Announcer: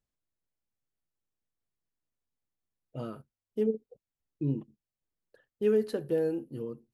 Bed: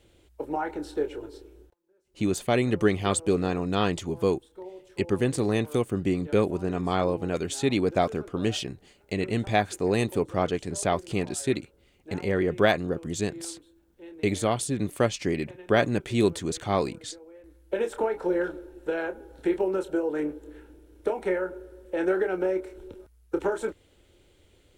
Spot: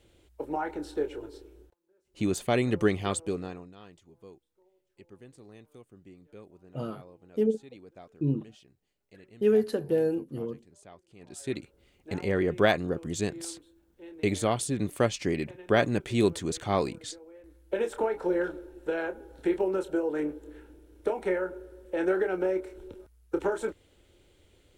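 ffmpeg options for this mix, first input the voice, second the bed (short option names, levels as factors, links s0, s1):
-filter_complex "[0:a]adelay=3800,volume=1.41[s0];[1:a]volume=13.3,afade=t=out:st=2.85:d=0.89:silence=0.0630957,afade=t=in:st=11.19:d=0.63:silence=0.0595662[s1];[s0][s1]amix=inputs=2:normalize=0"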